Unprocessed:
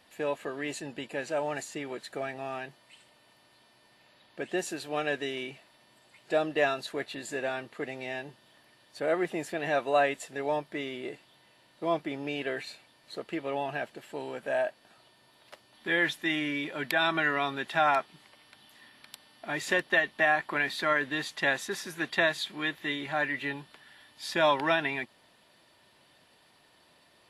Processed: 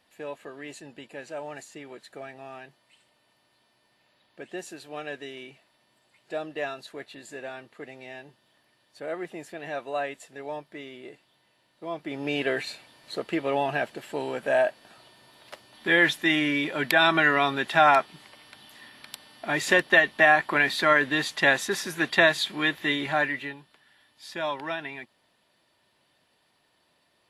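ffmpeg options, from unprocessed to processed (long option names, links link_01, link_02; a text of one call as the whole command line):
ffmpeg -i in.wav -af "volume=6.5dB,afade=type=in:start_time=11.96:duration=0.4:silence=0.251189,afade=type=out:start_time=23.08:duration=0.48:silence=0.237137" out.wav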